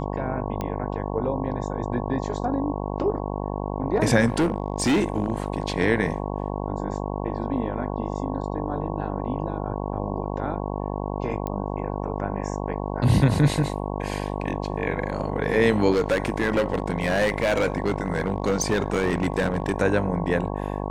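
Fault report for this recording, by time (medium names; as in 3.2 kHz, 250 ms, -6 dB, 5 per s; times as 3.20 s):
buzz 50 Hz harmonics 22 -29 dBFS
0.61 s: pop -16 dBFS
4.26–5.48 s: clipped -17 dBFS
11.47 s: pop -18 dBFS
15.92–19.76 s: clipped -17 dBFS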